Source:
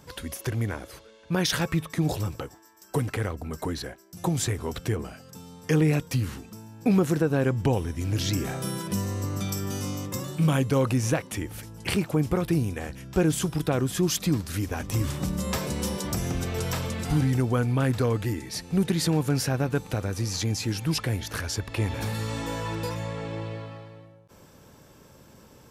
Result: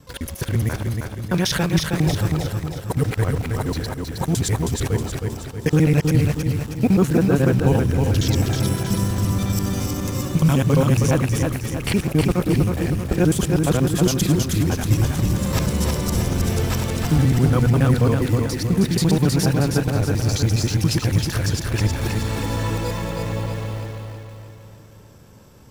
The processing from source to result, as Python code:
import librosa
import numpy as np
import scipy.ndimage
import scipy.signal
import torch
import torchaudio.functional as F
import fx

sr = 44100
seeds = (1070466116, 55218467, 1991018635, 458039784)

p1 = fx.local_reverse(x, sr, ms=69.0)
p2 = fx.low_shelf(p1, sr, hz=130.0, db=7.5)
p3 = fx.quant_dither(p2, sr, seeds[0], bits=6, dither='none')
p4 = p2 + (p3 * librosa.db_to_amplitude(-6.5))
y = fx.echo_feedback(p4, sr, ms=317, feedback_pct=49, wet_db=-4.0)